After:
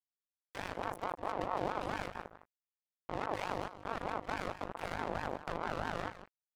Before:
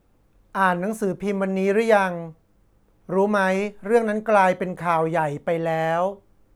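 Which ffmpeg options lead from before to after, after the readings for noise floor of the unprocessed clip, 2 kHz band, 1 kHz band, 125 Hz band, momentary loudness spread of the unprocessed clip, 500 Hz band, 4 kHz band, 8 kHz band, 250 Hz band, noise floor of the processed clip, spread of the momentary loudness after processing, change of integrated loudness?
-61 dBFS, -16.5 dB, -15.0 dB, -17.0 dB, 8 LU, -20.0 dB, -9.0 dB, -14.5 dB, -19.5 dB, under -85 dBFS, 8 LU, -17.5 dB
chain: -filter_complex "[0:a]bandreject=f=60:t=h:w=6,bandreject=f=120:t=h:w=6,bandreject=f=180:t=h:w=6,alimiter=limit=-12dB:level=0:latency=1,acrossover=split=190[a][b];[b]acompressor=threshold=-35dB:ratio=3[c];[a][c]amix=inputs=2:normalize=0,aeval=exprs='(tanh(56.2*val(0)+0.45)-tanh(0.45))/56.2':c=same,aeval=exprs='val(0)+0.00282*(sin(2*PI*50*n/s)+sin(2*PI*2*50*n/s)/2+sin(2*PI*3*50*n/s)/3+sin(2*PI*4*50*n/s)/4+sin(2*PI*5*50*n/s)/5)':c=same,acrusher=bits=4:mix=0:aa=0.5,asplit=2[d][e];[e]aecho=0:1:157:0.237[f];[d][f]amix=inputs=2:normalize=0,aeval=exprs='val(0)*sin(2*PI*710*n/s+710*0.3/4.6*sin(2*PI*4.6*n/s))':c=same,volume=11dB"

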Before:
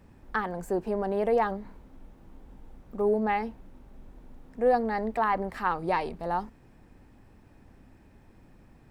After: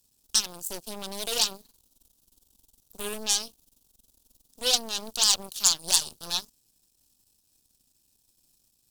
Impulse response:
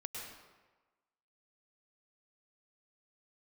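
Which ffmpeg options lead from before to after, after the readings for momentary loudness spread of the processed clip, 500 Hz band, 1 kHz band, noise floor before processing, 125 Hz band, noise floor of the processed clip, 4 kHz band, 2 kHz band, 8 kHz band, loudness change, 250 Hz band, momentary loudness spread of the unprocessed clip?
14 LU, -12.0 dB, -12.0 dB, -56 dBFS, -11.0 dB, -71 dBFS, +26.0 dB, -4.5 dB, n/a, +3.0 dB, -12.0 dB, 10 LU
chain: -af "aeval=exprs='0.224*(cos(1*acos(clip(val(0)/0.224,-1,1)))-cos(1*PI/2))+0.00447*(cos(5*acos(clip(val(0)/0.224,-1,1)))-cos(5*PI/2))+0.0501*(cos(6*acos(clip(val(0)/0.224,-1,1)))-cos(6*PI/2))+0.0282*(cos(7*acos(clip(val(0)/0.224,-1,1)))-cos(7*PI/2))+0.0708*(cos(8*acos(clip(val(0)/0.224,-1,1)))-cos(8*PI/2))':c=same,aemphasis=mode=production:type=cd,aexciter=amount=8.5:drive=9.8:freq=3.2k,volume=-11.5dB"

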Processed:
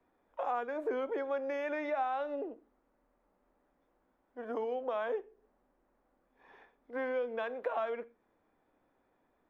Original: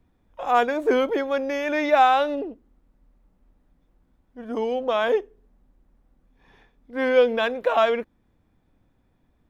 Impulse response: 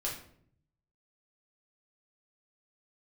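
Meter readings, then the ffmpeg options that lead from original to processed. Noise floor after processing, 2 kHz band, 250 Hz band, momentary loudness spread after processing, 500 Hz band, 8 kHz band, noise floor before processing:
-76 dBFS, -14.5 dB, -14.5 dB, 10 LU, -13.0 dB, n/a, -67 dBFS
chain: -filter_complex "[0:a]acrossover=split=190[a][b];[b]acompressor=threshold=-33dB:ratio=6[c];[a][c]amix=inputs=2:normalize=0,acrossover=split=330 2100:gain=0.0794 1 0.224[d][e][f];[d][e][f]amix=inputs=3:normalize=0,asplit=2[g][h];[1:a]atrim=start_sample=2205,atrim=end_sample=6615[i];[h][i]afir=irnorm=-1:irlink=0,volume=-17.5dB[j];[g][j]amix=inputs=2:normalize=0"

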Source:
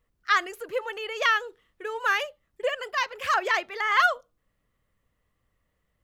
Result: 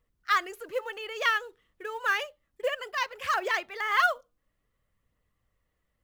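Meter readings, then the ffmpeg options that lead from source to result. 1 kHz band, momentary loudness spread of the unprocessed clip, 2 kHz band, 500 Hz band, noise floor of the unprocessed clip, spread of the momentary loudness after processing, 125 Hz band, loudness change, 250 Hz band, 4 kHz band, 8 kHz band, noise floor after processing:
-3.0 dB, 14 LU, -3.0 dB, -3.0 dB, -76 dBFS, 14 LU, n/a, -3.0 dB, -2.5 dB, -3.0 dB, -2.5 dB, -79 dBFS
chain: -af "aphaser=in_gain=1:out_gain=1:delay=4.1:decay=0.24:speed=0.58:type=triangular,acrusher=bits=7:mode=log:mix=0:aa=0.000001,volume=-3.5dB"

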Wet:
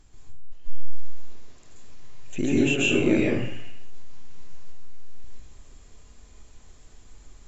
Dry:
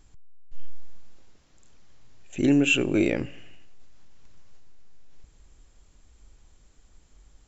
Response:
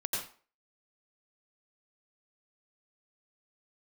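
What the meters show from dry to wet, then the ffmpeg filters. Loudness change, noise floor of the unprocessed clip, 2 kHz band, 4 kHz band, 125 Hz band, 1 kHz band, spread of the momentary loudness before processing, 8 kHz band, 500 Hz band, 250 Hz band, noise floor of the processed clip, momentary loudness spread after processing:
0.0 dB, -58 dBFS, +0.5 dB, +1.0 dB, +2.5 dB, +2.5 dB, 18 LU, n/a, +2.5 dB, +0.5 dB, -51 dBFS, 13 LU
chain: -filter_complex "[0:a]acompressor=threshold=-24dB:ratio=10[a];[1:a]atrim=start_sample=2205,afade=t=out:st=0.29:d=0.01,atrim=end_sample=13230,asetrate=28665,aresample=44100[b];[a][b]afir=irnorm=-1:irlink=0"

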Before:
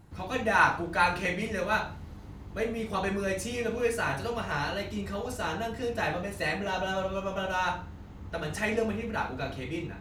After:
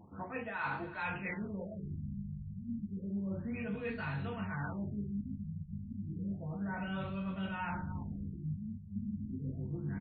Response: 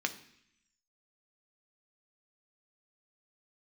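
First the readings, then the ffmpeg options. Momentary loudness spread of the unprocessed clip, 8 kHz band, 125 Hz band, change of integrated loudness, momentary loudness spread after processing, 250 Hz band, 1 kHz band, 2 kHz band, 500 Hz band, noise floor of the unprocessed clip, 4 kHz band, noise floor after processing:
10 LU, under -35 dB, -1.0 dB, -9.5 dB, 5 LU, -2.5 dB, -14.0 dB, -13.0 dB, -15.5 dB, -45 dBFS, -17.5 dB, -47 dBFS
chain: -filter_complex "[0:a]asubboost=boost=8:cutoff=160,aecho=1:1:321:0.0841[a];[1:a]atrim=start_sample=2205,atrim=end_sample=3087[b];[a][b]afir=irnorm=-1:irlink=0,flanger=delay=9.2:depth=5.7:regen=-42:speed=0.66:shape=triangular,areverse,acompressor=threshold=-41dB:ratio=5,areverse,highshelf=f=8k:g=-10.5,afftfilt=real='re*lt(b*sr/1024,210*pow(4700/210,0.5+0.5*sin(2*PI*0.31*pts/sr)))':imag='im*lt(b*sr/1024,210*pow(4700/210,0.5+0.5*sin(2*PI*0.31*pts/sr)))':win_size=1024:overlap=0.75,volume=4dB"

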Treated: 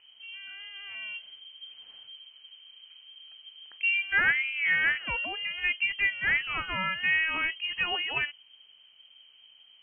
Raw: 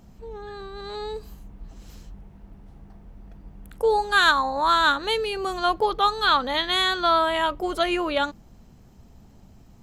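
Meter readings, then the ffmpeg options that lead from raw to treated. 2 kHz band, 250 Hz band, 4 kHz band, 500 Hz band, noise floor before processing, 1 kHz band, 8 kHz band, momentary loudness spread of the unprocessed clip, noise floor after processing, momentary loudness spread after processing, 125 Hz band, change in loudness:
+0.5 dB, -16.5 dB, -7.0 dB, -22.5 dB, -51 dBFS, -17.5 dB, under -35 dB, 18 LU, -58 dBFS, 22 LU, -6.0 dB, -5.0 dB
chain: -af "aemphasis=mode=production:type=75fm,lowpass=f=2.7k:t=q:w=0.5098,lowpass=f=2.7k:t=q:w=0.6013,lowpass=f=2.7k:t=q:w=0.9,lowpass=f=2.7k:t=q:w=2.563,afreqshift=-3200,volume=-6dB"

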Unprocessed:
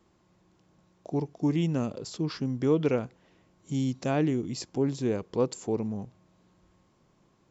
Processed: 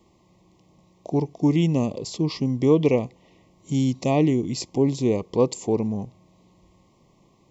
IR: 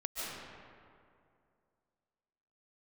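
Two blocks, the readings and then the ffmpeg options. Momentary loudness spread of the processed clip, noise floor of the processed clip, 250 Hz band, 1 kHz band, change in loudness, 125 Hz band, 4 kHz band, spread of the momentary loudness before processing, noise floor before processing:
9 LU, -60 dBFS, +6.5 dB, +6.0 dB, +6.5 dB, +6.5 dB, +6.5 dB, 9 LU, -67 dBFS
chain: -af "asuperstop=centerf=1500:order=12:qfactor=2.1,volume=6.5dB"

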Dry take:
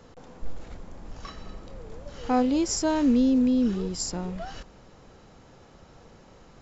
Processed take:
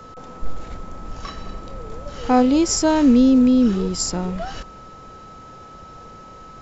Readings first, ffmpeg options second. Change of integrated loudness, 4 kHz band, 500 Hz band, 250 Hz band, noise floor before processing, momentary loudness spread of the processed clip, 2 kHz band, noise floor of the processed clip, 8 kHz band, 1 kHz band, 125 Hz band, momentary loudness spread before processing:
+7.5 dB, +7.5 dB, +7.5 dB, +7.5 dB, -53 dBFS, 22 LU, +7.5 dB, -42 dBFS, n/a, +8.0 dB, +7.5 dB, 22 LU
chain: -af "aeval=exprs='val(0)+0.00398*sin(2*PI*1300*n/s)':c=same,volume=7.5dB"

